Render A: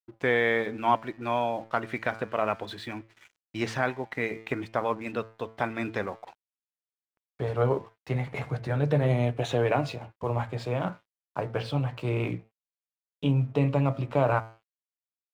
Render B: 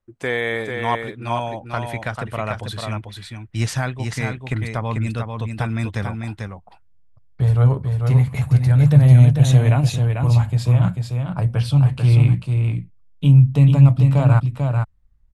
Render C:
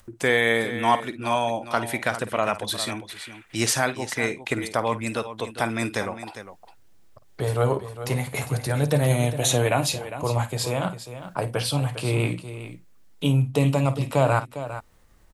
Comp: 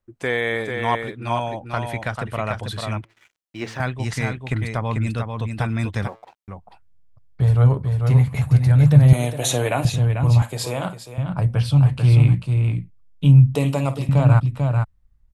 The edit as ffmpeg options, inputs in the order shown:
-filter_complex "[0:a]asplit=2[a][b];[2:a]asplit=3[c][d][e];[1:a]asplit=6[f][g][h][i][j][k];[f]atrim=end=3.052[l];[a]atrim=start=3.048:end=3.802[m];[g]atrim=start=3.798:end=6.082[n];[b]atrim=start=6.078:end=6.482[o];[h]atrim=start=6.478:end=9.132[p];[c]atrim=start=9.128:end=9.852[q];[i]atrim=start=9.848:end=10.422[r];[d]atrim=start=10.418:end=11.182[s];[j]atrim=start=11.178:end=13.552[t];[e]atrim=start=13.548:end=14.092[u];[k]atrim=start=14.088[v];[l][m]acrossfade=d=0.004:c1=hsin:c2=hsin[w];[w][n]acrossfade=d=0.004:c1=hsin:c2=hsin[x];[x][o]acrossfade=d=0.004:c1=hsin:c2=hsin[y];[y][p]acrossfade=d=0.004:c1=hsin:c2=hsin[z];[z][q]acrossfade=d=0.004:c1=hsin:c2=hsin[aa];[aa][r]acrossfade=d=0.004:c1=hsin:c2=hsin[ab];[ab][s]acrossfade=d=0.004:c1=hsin:c2=hsin[ac];[ac][t]acrossfade=d=0.004:c1=hsin:c2=hsin[ad];[ad][u]acrossfade=d=0.004:c1=hsin:c2=hsin[ae];[ae][v]acrossfade=d=0.004:c1=hsin:c2=hsin"

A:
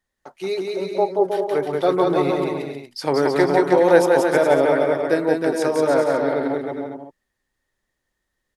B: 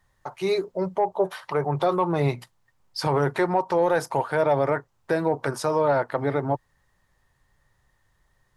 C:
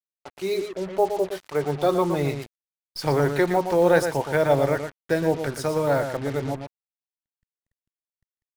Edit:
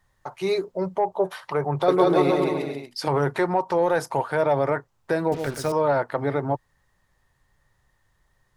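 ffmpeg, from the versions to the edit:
-filter_complex "[1:a]asplit=3[a][b][c];[a]atrim=end=1.882[d];[0:a]atrim=start=1.878:end=3.082[e];[b]atrim=start=3.078:end=5.322[f];[2:a]atrim=start=5.318:end=5.722[g];[c]atrim=start=5.718[h];[d][e]acrossfade=d=0.004:c1=hsin:c2=hsin[i];[i][f]acrossfade=d=0.004:c1=hsin:c2=hsin[j];[j][g]acrossfade=d=0.004:c1=hsin:c2=hsin[k];[k][h]acrossfade=d=0.004:c1=hsin:c2=hsin"

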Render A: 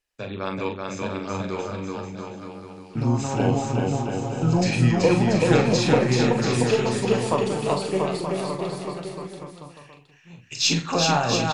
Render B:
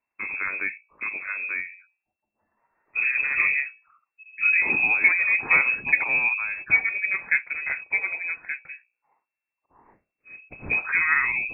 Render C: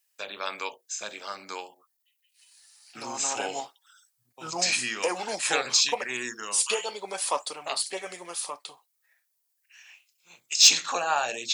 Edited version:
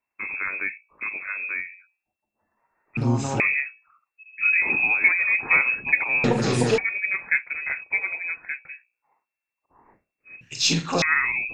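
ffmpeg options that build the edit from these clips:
-filter_complex "[0:a]asplit=3[a][b][c];[1:a]asplit=4[d][e][f][g];[d]atrim=end=2.972[h];[a]atrim=start=2.968:end=3.402[i];[e]atrim=start=3.398:end=6.242[j];[b]atrim=start=6.238:end=6.782[k];[f]atrim=start=6.778:end=10.412[l];[c]atrim=start=10.408:end=11.022[m];[g]atrim=start=11.018[n];[h][i]acrossfade=d=0.004:c1=hsin:c2=hsin[o];[o][j]acrossfade=d=0.004:c1=hsin:c2=hsin[p];[p][k]acrossfade=d=0.004:c1=hsin:c2=hsin[q];[q][l]acrossfade=d=0.004:c1=hsin:c2=hsin[r];[r][m]acrossfade=d=0.004:c1=hsin:c2=hsin[s];[s][n]acrossfade=d=0.004:c1=hsin:c2=hsin"

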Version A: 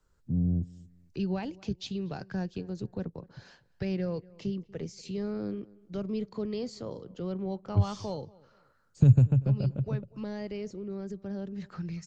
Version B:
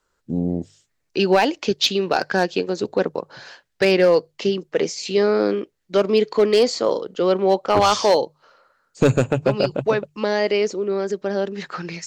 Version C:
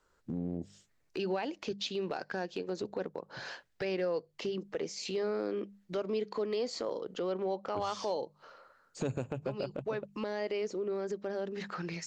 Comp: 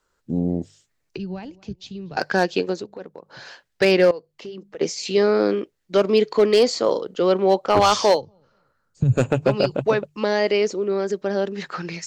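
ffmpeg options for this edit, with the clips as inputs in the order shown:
-filter_complex "[0:a]asplit=2[a][b];[2:a]asplit=2[c][d];[1:a]asplit=5[e][f][g][h][i];[e]atrim=end=1.172[j];[a]atrim=start=1.168:end=2.172[k];[f]atrim=start=2.168:end=2.86[l];[c]atrim=start=2.7:end=3.41[m];[g]atrim=start=3.25:end=4.112[n];[d]atrim=start=4.108:end=4.812[o];[h]atrim=start=4.808:end=8.22[p];[b]atrim=start=8.12:end=9.21[q];[i]atrim=start=9.11[r];[j][k]acrossfade=d=0.004:c1=hsin:c2=hsin[s];[s][l]acrossfade=d=0.004:c1=hsin:c2=hsin[t];[t][m]acrossfade=d=0.16:c1=tri:c2=tri[u];[u][n]acrossfade=d=0.16:c1=tri:c2=tri[v];[v][o]acrossfade=d=0.004:c1=hsin:c2=hsin[w];[w][p]acrossfade=d=0.004:c1=hsin:c2=hsin[x];[x][q]acrossfade=d=0.1:c1=tri:c2=tri[y];[y][r]acrossfade=d=0.1:c1=tri:c2=tri"

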